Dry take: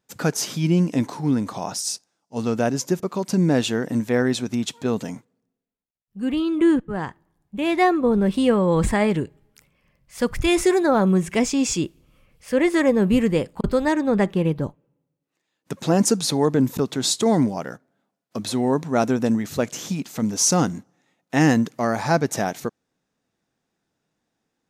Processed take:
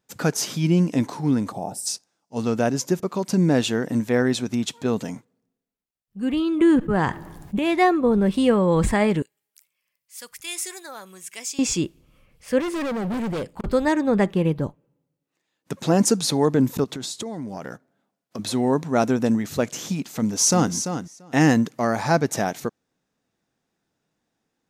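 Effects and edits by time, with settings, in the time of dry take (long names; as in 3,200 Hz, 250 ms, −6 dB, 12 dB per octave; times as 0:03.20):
0:01.52–0:01.86: gain on a spectral selection 900–7,300 Hz −15 dB
0:06.60–0:07.59: envelope flattener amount 50%
0:09.22–0:11.59: first difference
0:12.60–0:13.67: hard clipping −24.5 dBFS
0:16.84–0:18.39: downward compressor 16 to 1, threshold −27 dBFS
0:20.17–0:20.73: delay throw 340 ms, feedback 10%, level −8.5 dB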